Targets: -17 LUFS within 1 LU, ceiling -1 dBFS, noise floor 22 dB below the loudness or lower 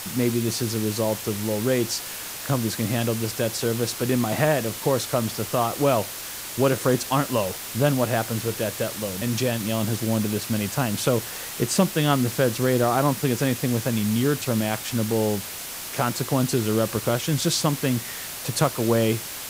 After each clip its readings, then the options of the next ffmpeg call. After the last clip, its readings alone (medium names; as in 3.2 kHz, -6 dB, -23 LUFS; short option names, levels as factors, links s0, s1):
noise floor -35 dBFS; noise floor target -46 dBFS; loudness -24.0 LUFS; peak level -7.0 dBFS; loudness target -17.0 LUFS
-> -af "afftdn=nr=11:nf=-35"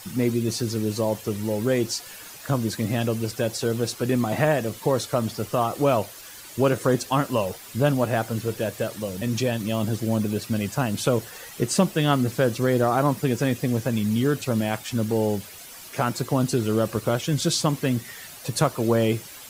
noise floor -42 dBFS; noise floor target -47 dBFS
-> -af "afftdn=nr=6:nf=-42"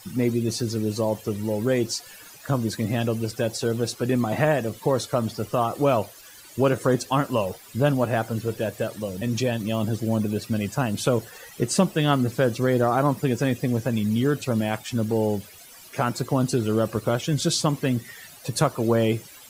noise floor -47 dBFS; loudness -24.5 LUFS; peak level -7.5 dBFS; loudness target -17.0 LUFS
-> -af "volume=2.37,alimiter=limit=0.891:level=0:latency=1"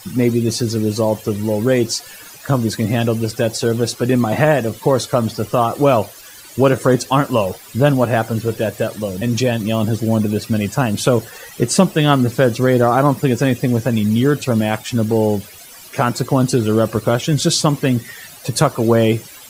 loudness -17.0 LUFS; peak level -1.0 dBFS; noise floor -39 dBFS